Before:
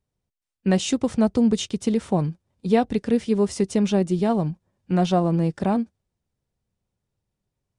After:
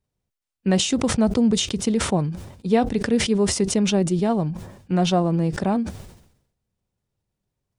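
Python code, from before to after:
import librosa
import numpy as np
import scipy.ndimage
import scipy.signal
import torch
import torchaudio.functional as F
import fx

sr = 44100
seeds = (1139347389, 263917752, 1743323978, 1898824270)

y = fx.sustainer(x, sr, db_per_s=76.0)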